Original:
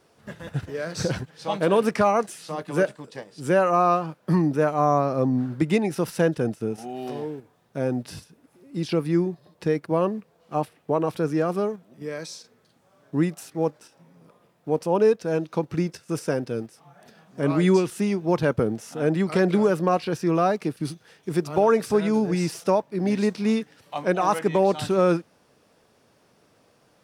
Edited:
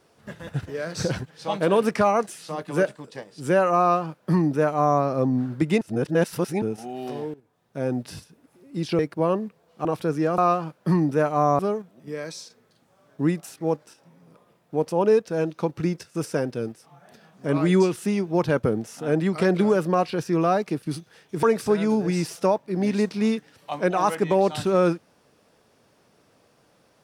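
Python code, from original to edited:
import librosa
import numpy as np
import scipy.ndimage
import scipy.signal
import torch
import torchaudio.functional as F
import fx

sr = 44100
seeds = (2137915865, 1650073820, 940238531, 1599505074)

y = fx.edit(x, sr, fx.duplicate(start_s=3.8, length_s=1.21, to_s=11.53),
    fx.reverse_span(start_s=5.81, length_s=0.81),
    fx.fade_in_from(start_s=7.34, length_s=0.58, floor_db=-17.0),
    fx.cut(start_s=8.99, length_s=0.72),
    fx.cut(start_s=10.57, length_s=0.43),
    fx.cut(start_s=21.37, length_s=0.3), tone=tone)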